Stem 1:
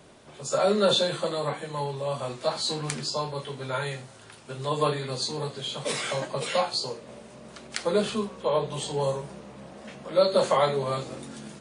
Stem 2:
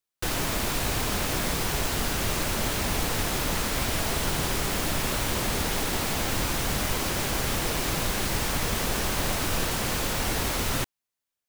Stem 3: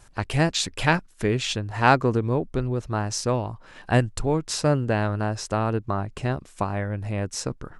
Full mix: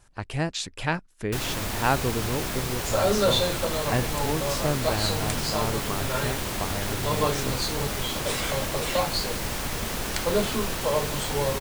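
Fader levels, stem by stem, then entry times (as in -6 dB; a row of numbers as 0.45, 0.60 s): -0.5, -3.0, -6.0 dB; 2.40, 1.10, 0.00 s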